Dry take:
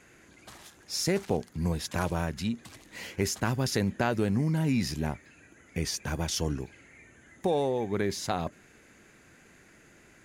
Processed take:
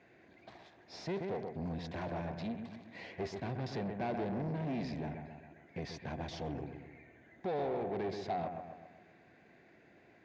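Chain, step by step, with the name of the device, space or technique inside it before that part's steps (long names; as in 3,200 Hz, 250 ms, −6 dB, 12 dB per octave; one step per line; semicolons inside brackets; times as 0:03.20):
analogue delay pedal into a guitar amplifier (bucket-brigade delay 130 ms, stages 2,048, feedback 48%, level −8.5 dB; tube saturation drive 31 dB, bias 0.5; loudspeaker in its box 91–4,000 Hz, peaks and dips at 360 Hz +3 dB, 690 Hz +9 dB, 1,300 Hz −8 dB, 3,000 Hz −6 dB)
level −3.5 dB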